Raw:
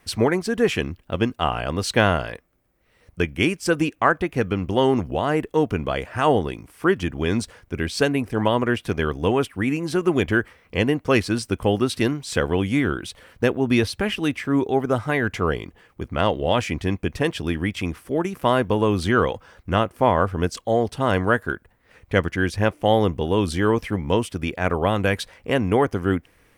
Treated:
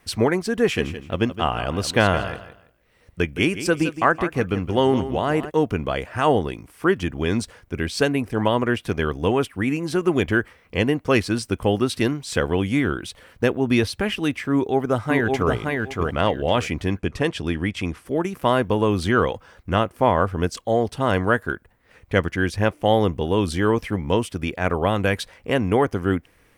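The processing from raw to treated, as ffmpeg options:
ffmpeg -i in.wav -filter_complex "[0:a]asplit=3[link_01][link_02][link_03];[link_01]afade=type=out:start_time=0.76:duration=0.02[link_04];[link_02]aecho=1:1:166|332|498:0.251|0.0578|0.0133,afade=type=in:start_time=0.76:duration=0.02,afade=type=out:start_time=5.49:duration=0.02[link_05];[link_03]afade=type=in:start_time=5.49:duration=0.02[link_06];[link_04][link_05][link_06]amix=inputs=3:normalize=0,asplit=2[link_07][link_08];[link_08]afade=type=in:start_time=14.53:duration=0.01,afade=type=out:start_time=15.53:duration=0.01,aecho=0:1:570|1140|1710:0.707946|0.141589|0.0283178[link_09];[link_07][link_09]amix=inputs=2:normalize=0,asettb=1/sr,asplit=3[link_10][link_11][link_12];[link_10]atrim=end=17.004[link_13];[link_11]atrim=start=17:end=18.06,asetpts=PTS-STARTPTS,afade=type=in:duration=0.004:curve=qsin,afade=type=out:start_time=1.056:duration=0.004:curve=qsin,lowpass=10000[link_14];[link_12]atrim=start=18.056[link_15];[link_13][link_14]acrossfade=duration=0.004:curve1=hsin:curve2=qsin[link_16];[link_16][link_15]acrossfade=duration=0.004:curve1=qsin:curve2=hsin" out.wav

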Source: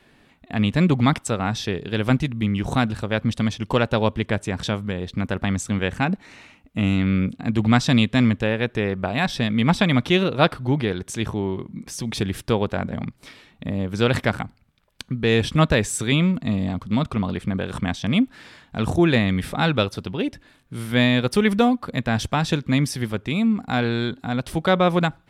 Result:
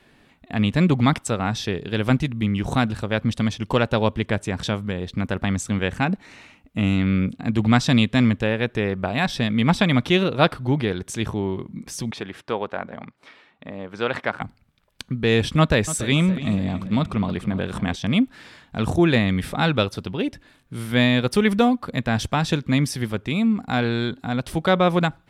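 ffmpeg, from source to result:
ffmpeg -i in.wav -filter_complex "[0:a]asettb=1/sr,asplit=3[link_01][link_02][link_03];[link_01]atrim=end=12.114[link_04];[link_02]atrim=start=12.11:end=14.41,asetpts=PTS-STARTPTS,afade=type=in:duration=0.004:curve=qsin,afade=type=out:start_time=2.296:duration=0.004:curve=qsin,bandpass=frequency=1100:width_type=q:width=0.62[link_05];[link_03]atrim=start=14.406[link_06];[link_04][link_05]acrossfade=duration=0.004:curve1=hsin:curve2=qsin[link_07];[link_07][link_06]acrossfade=duration=0.004:curve1=qsin:curve2=hsin,asettb=1/sr,asplit=3[link_08][link_09][link_10];[link_08]atrim=end=15.594[link_11];[link_09]atrim=start=15.59:end=17.96,asetpts=PTS-STARTPTS,afade=type=in:duration=0.004:curve=qsin,afade=type=out:start_time=2.366:duration=0.004:curve=qsin,asplit=2[link_12][link_13];[link_13]adelay=284,lowpass=frequency=4200:poles=1,volume=-14dB,asplit=2[link_14][link_15];[link_15]adelay=284,lowpass=frequency=4200:poles=1,volume=0.53,asplit=2[link_16][link_17];[link_17]adelay=284,lowpass=frequency=4200:poles=1,volume=0.53,asplit=2[link_18][link_19];[link_19]adelay=284,lowpass=frequency=4200:poles=1,volume=0.53,asplit=2[link_20][link_21];[link_21]adelay=284,lowpass=frequency=4200:poles=1,volume=0.53[link_22];[link_12][link_14][link_16][link_18][link_20][link_22]amix=inputs=6:normalize=0,atrim=end_sample=104517[link_23];[link_10]atrim=start=17.956[link_24];[link_11][link_23]acrossfade=duration=0.004:curve1=hsin:curve2=qsin[link_25];[link_25][link_24]acrossfade=duration=0.004:curve1=qsin:curve2=hsin" out.wav

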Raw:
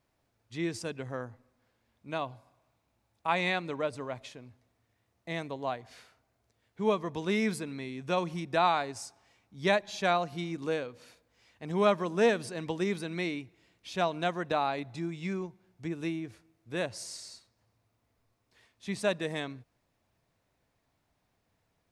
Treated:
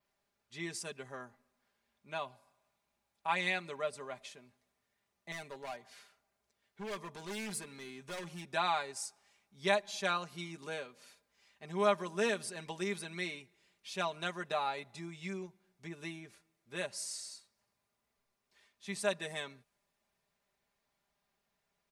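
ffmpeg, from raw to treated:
ffmpeg -i in.wav -filter_complex "[0:a]asettb=1/sr,asplit=3[link_01][link_02][link_03];[link_01]atrim=end=5.324[link_04];[link_02]atrim=start=5.32:end=8.47,asetpts=PTS-STARTPTS,afade=type=in:duration=0.004:curve=qsin,afade=type=out:start_time=3.146:duration=0.004:curve=qsin,volume=33dB,asoftclip=hard,volume=-33dB[link_05];[link_03]atrim=start=8.466[link_06];[link_04][link_05]acrossfade=duration=0.004:curve1=hsin:curve2=qsin[link_07];[link_07][link_06]acrossfade=duration=0.004:curve1=qsin:curve2=hsin,lowshelf=frequency=490:gain=-9,aecho=1:1:5:0.7,adynamicequalizer=threshold=0.00112:dfrequency=9600:dqfactor=1.1:tfrequency=9600:tqfactor=1.1:attack=5:release=100:ratio=0.375:range=3.5:mode=boostabove:tftype=bell,volume=-4.5dB" out.wav

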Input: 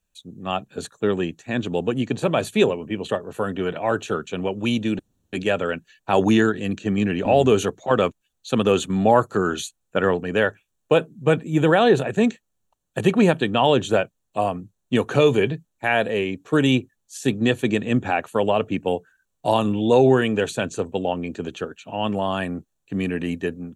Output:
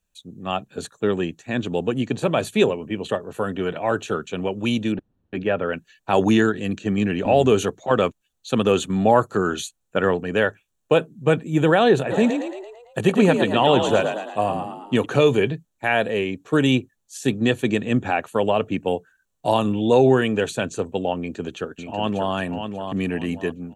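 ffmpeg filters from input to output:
ffmpeg -i in.wav -filter_complex "[0:a]asettb=1/sr,asplit=3[link_01][link_02][link_03];[link_01]atrim=end=4.924[link_04];[link_02]atrim=start=4.92:end=5.73,asetpts=PTS-STARTPTS,afade=type=in:duration=0.004:curve=qsin,afade=type=out:start_time=0.806:duration=0.004:curve=qsin,lowpass=2100[link_05];[link_03]atrim=start=5.726[link_06];[link_04][link_05]acrossfade=duration=0.004:curve1=hsin:curve2=qsin[link_07];[link_07][link_06]acrossfade=duration=0.004:curve1=qsin:curve2=hsin,asplit=3[link_08][link_09][link_10];[link_08]afade=type=out:start_time=12.1:duration=0.02[link_11];[link_09]asplit=7[link_12][link_13][link_14][link_15][link_16][link_17][link_18];[link_13]adelay=112,afreqshift=48,volume=-6.5dB[link_19];[link_14]adelay=224,afreqshift=96,volume=-12.2dB[link_20];[link_15]adelay=336,afreqshift=144,volume=-17.9dB[link_21];[link_16]adelay=448,afreqshift=192,volume=-23.5dB[link_22];[link_17]adelay=560,afreqshift=240,volume=-29.2dB[link_23];[link_18]adelay=672,afreqshift=288,volume=-34.9dB[link_24];[link_12][link_19][link_20][link_21][link_22][link_23][link_24]amix=inputs=7:normalize=0,afade=type=in:start_time=12.1:duration=0.02,afade=type=out:start_time=15.04:duration=0.02[link_25];[link_10]afade=type=in:start_time=15.04:duration=0.02[link_26];[link_11][link_25][link_26]amix=inputs=3:normalize=0,asplit=2[link_27][link_28];[link_28]afade=type=in:start_time=21.19:duration=0.01,afade=type=out:start_time=22.33:duration=0.01,aecho=0:1:590|1180|1770|2360:0.473151|0.141945|0.0425836|0.0127751[link_29];[link_27][link_29]amix=inputs=2:normalize=0" out.wav

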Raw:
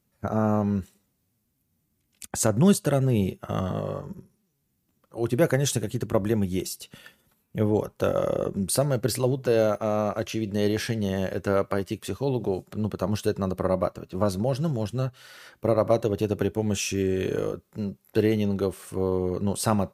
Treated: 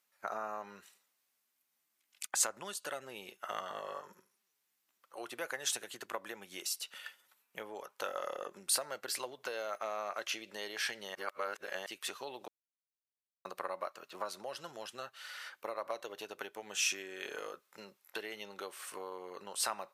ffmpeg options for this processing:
ffmpeg -i in.wav -filter_complex "[0:a]asplit=5[link_01][link_02][link_03][link_04][link_05];[link_01]atrim=end=11.152[link_06];[link_02]atrim=start=11.148:end=11.862,asetpts=PTS-STARTPTS,areverse[link_07];[link_03]atrim=start=11.858:end=12.48,asetpts=PTS-STARTPTS,afade=type=out:start_time=0.618:duration=0.004:curve=hsin[link_08];[link_04]atrim=start=12.48:end=13.45,asetpts=PTS-STARTPTS,volume=0[link_09];[link_05]atrim=start=13.45,asetpts=PTS-STARTPTS,afade=type=in:duration=0.004:curve=hsin[link_10];[link_06][link_07]acrossfade=duration=0.004:curve1=hsin:curve2=hsin[link_11];[link_08][link_09][link_10]concat=n=3:v=0:a=1[link_12];[link_11][link_12]acrossfade=duration=0.004:curve1=hsin:curve2=hsin,highshelf=frequency=5300:gain=-6.5,acompressor=threshold=-27dB:ratio=6,highpass=1100,volume=3dB" out.wav

